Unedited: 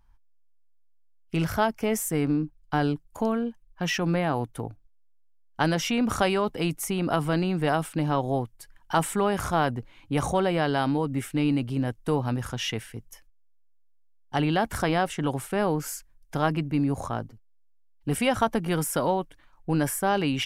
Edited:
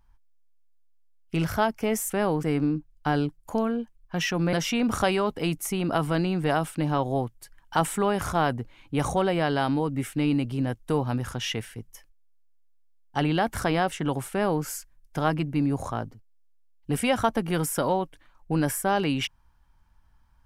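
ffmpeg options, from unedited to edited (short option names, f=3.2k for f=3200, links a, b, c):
-filter_complex "[0:a]asplit=4[a][b][c][d];[a]atrim=end=2.102[e];[b]atrim=start=15.488:end=15.822[f];[c]atrim=start=2.098:end=4.202[g];[d]atrim=start=5.708[h];[e][f]acrossfade=d=0.004:c1=hsin:c2=hsin[i];[i][g]acrossfade=d=0.004:c1=hsin:c2=hsin[j];[j][h]acrossfade=d=0.004:c1=hsin:c2=hsin"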